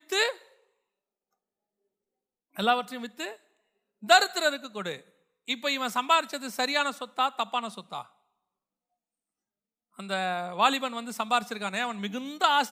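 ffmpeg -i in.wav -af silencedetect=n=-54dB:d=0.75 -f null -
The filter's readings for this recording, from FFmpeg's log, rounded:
silence_start: 0.54
silence_end: 2.54 | silence_duration: 2.01
silence_start: 8.12
silence_end: 9.96 | silence_duration: 1.84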